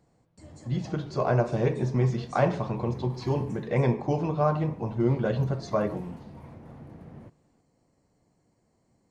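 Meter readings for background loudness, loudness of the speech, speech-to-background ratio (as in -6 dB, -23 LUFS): -45.5 LUFS, -27.5 LUFS, 18.0 dB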